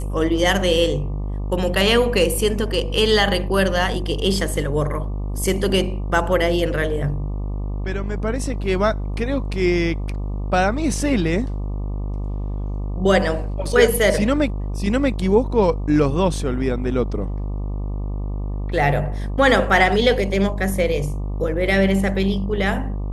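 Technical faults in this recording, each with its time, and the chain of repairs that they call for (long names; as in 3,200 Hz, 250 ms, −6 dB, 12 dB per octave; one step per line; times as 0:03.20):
mains buzz 50 Hz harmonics 24 −25 dBFS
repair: hum removal 50 Hz, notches 24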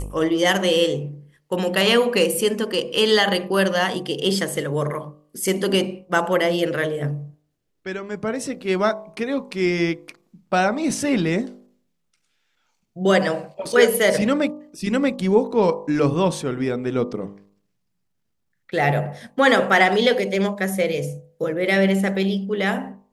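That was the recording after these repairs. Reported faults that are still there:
none of them is left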